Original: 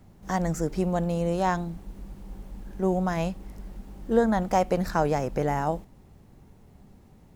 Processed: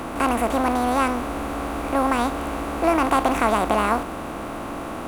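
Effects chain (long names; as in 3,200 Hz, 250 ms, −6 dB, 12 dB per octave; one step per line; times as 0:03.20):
compressor on every frequency bin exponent 0.4
change of speed 1.45×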